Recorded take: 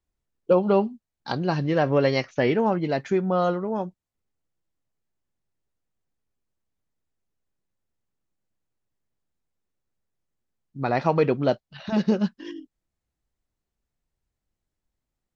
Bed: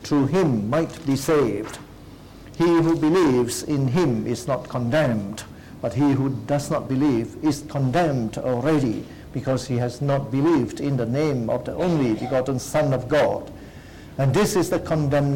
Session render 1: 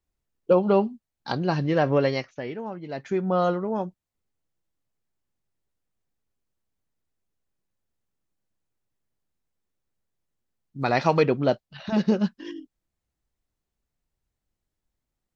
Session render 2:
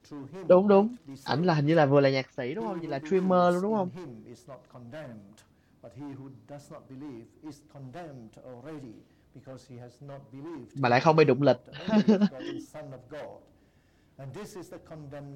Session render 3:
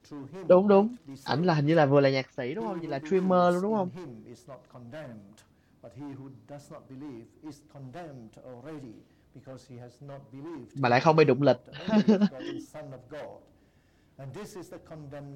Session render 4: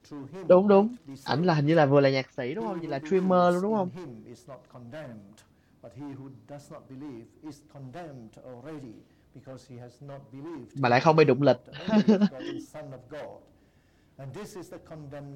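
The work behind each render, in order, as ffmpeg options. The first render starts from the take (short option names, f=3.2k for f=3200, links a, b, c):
-filter_complex "[0:a]asplit=3[a][b][c];[a]afade=t=out:st=10.79:d=0.02[d];[b]highshelf=f=2.5k:g=11,afade=t=in:st=10.79:d=0.02,afade=t=out:st=11.22:d=0.02[e];[c]afade=t=in:st=11.22:d=0.02[f];[d][e][f]amix=inputs=3:normalize=0,asplit=3[g][h][i];[g]atrim=end=2.42,asetpts=PTS-STARTPTS,afade=t=out:st=1.93:d=0.49:silence=0.251189[j];[h]atrim=start=2.42:end=2.85,asetpts=PTS-STARTPTS,volume=-12dB[k];[i]atrim=start=2.85,asetpts=PTS-STARTPTS,afade=t=in:d=0.49:silence=0.251189[l];[j][k][l]concat=n=3:v=0:a=1"
-filter_complex "[1:a]volume=-22.5dB[a];[0:a][a]amix=inputs=2:normalize=0"
-af anull
-af "volume=1dB"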